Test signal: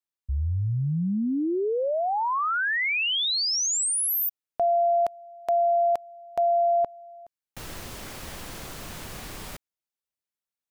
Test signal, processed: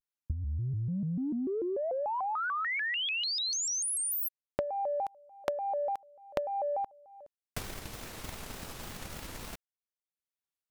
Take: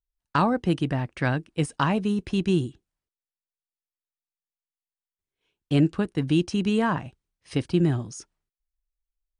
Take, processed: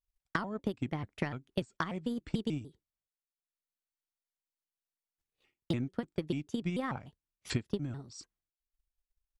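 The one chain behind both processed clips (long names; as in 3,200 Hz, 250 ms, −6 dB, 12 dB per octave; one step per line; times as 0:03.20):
transient designer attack +11 dB, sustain −7 dB
downward compressor 10 to 1, threshold −25 dBFS
pitch modulation by a square or saw wave square 3.4 Hz, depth 250 cents
level −5 dB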